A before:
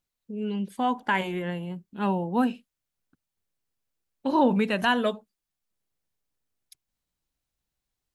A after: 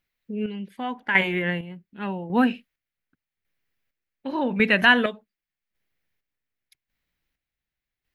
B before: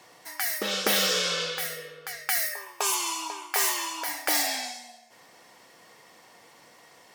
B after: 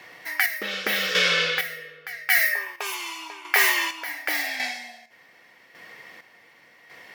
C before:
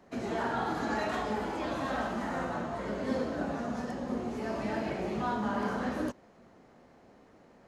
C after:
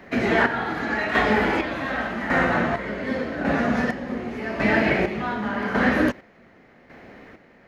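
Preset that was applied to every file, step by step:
square tremolo 0.87 Hz, depth 60%, duty 40%; graphic EQ 1/2/8 kHz -4/+11/-10 dB; normalise loudness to -23 LUFS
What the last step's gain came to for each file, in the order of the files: +4.0 dB, +4.5 dB, +13.0 dB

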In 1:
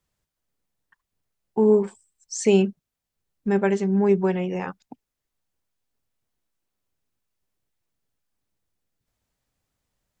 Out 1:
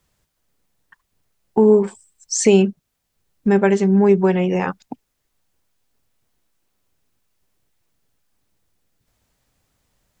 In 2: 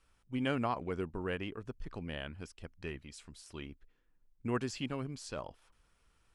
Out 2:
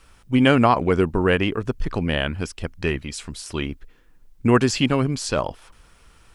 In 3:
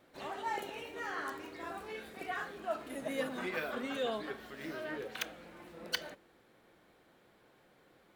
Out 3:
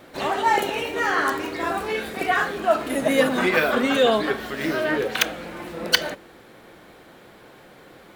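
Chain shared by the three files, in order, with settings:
compression 1.5:1, threshold -30 dBFS; peak normalisation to -2 dBFS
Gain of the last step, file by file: +10.5 dB, +18.5 dB, +17.5 dB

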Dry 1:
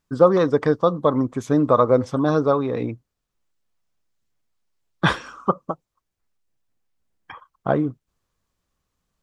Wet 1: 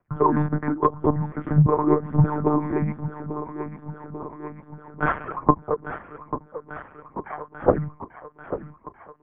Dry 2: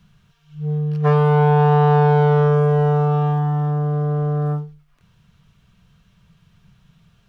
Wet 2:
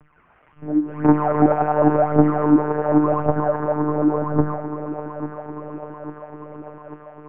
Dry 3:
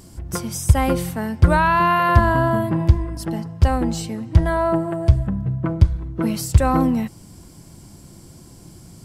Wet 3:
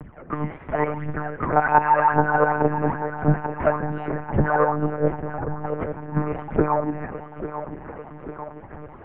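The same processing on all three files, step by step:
spectrogram pixelated in time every 50 ms; high-pass 95 Hz 24 dB/octave; bass shelf 130 Hz -10.5 dB; hum notches 50/100/150/200/250 Hz; compression 3:1, threshold -30 dBFS; phaser 0.91 Hz, delay 3.7 ms, feedback 77%; on a send: thinning echo 844 ms, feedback 68%, high-pass 210 Hz, level -10.5 dB; on the sum: monotone LPC vocoder at 8 kHz 150 Hz; mistuned SSB -150 Hz 190–2200 Hz; peak normalisation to -2 dBFS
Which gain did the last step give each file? +7.0 dB, +10.0 dB, +8.0 dB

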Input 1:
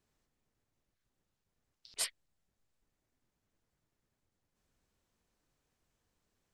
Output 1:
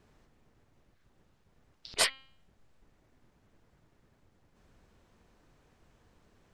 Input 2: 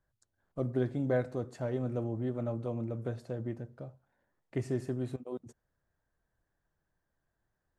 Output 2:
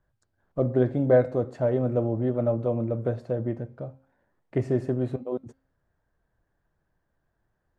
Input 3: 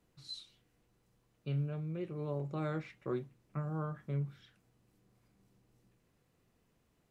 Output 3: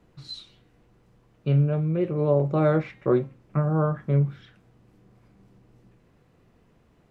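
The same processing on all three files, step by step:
low-pass 1.9 kHz 6 dB/octave; de-hum 266.7 Hz, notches 18; dynamic bell 570 Hz, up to +6 dB, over -49 dBFS, Q 2.1; peak normalisation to -9 dBFS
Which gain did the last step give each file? +17.5 dB, +7.5 dB, +14.0 dB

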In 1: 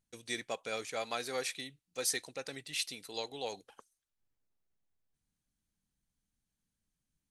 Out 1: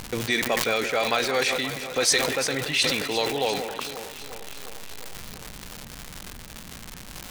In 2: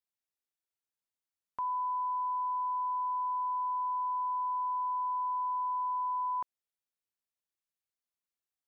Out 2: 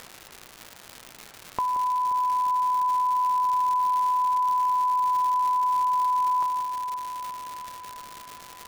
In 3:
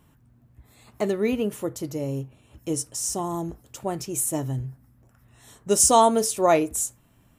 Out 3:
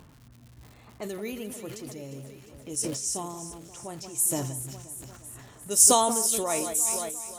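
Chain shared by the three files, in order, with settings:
level-controlled noise filter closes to 1.4 kHz, open at -21.5 dBFS; pre-emphasis filter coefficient 0.8; upward compressor, threshold -41 dBFS; echo whose repeats swap between lows and highs 176 ms, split 2.1 kHz, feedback 81%, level -10.5 dB; crackle 260 per s -47 dBFS; decay stretcher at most 41 dB/s; normalise loudness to -24 LUFS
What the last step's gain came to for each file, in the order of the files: +22.5 dB, +18.0 dB, +1.0 dB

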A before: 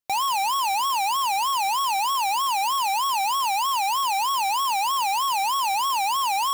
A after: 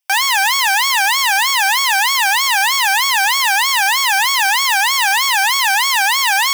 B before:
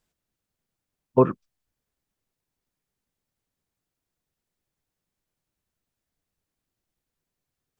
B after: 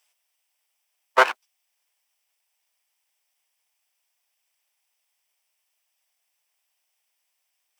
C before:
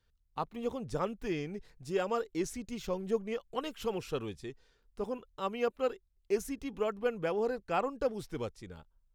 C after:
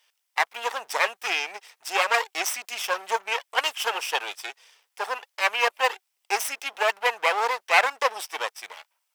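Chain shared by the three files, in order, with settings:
comb filter that takes the minimum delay 0.37 ms; high-pass 780 Hz 24 dB/octave; peak normalisation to -3 dBFS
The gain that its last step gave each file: +12.0 dB, +12.5 dB, +18.5 dB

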